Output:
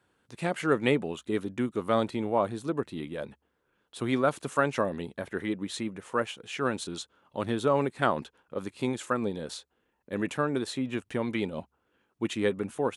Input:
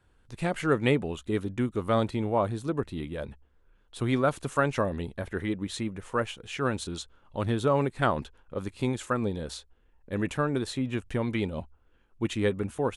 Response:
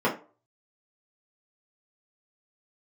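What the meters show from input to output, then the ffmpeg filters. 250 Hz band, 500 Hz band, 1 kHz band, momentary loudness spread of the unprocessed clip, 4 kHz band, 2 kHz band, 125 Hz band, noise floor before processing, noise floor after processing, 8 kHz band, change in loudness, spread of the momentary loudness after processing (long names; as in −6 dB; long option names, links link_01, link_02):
−1.0 dB, 0.0 dB, 0.0 dB, 11 LU, 0.0 dB, 0.0 dB, −6.0 dB, −64 dBFS, −76 dBFS, 0.0 dB, −1.0 dB, 11 LU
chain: -af "highpass=170"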